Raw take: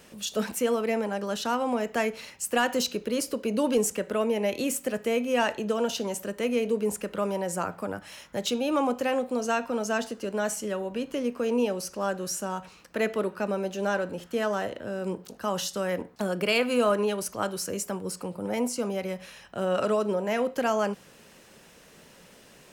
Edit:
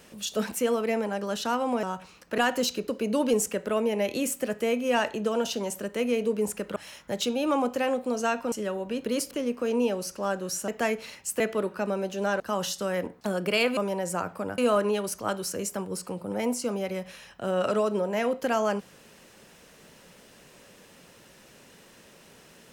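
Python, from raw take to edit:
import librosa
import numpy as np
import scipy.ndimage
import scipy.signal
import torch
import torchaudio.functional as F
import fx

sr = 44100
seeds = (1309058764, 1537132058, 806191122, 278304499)

y = fx.edit(x, sr, fx.swap(start_s=1.83, length_s=0.72, other_s=12.46, other_length_s=0.55),
    fx.move(start_s=3.05, length_s=0.27, to_s=11.09),
    fx.move(start_s=7.2, length_s=0.81, to_s=16.72),
    fx.cut(start_s=9.77, length_s=0.8),
    fx.cut(start_s=14.01, length_s=1.34), tone=tone)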